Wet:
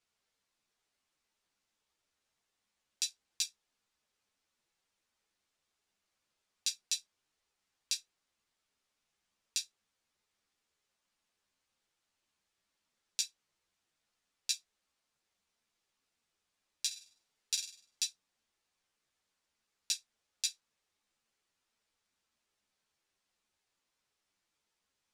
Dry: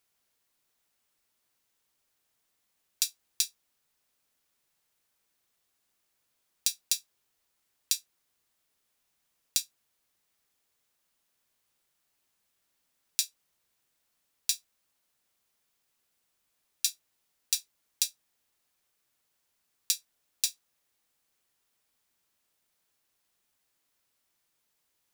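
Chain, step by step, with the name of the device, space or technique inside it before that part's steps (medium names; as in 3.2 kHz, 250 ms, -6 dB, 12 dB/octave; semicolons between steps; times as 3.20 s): 16.86–18.02 s: flutter echo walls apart 8.5 m, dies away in 0.46 s; string-machine ensemble chorus (three-phase chorus; low-pass 7.2 kHz 12 dB/octave)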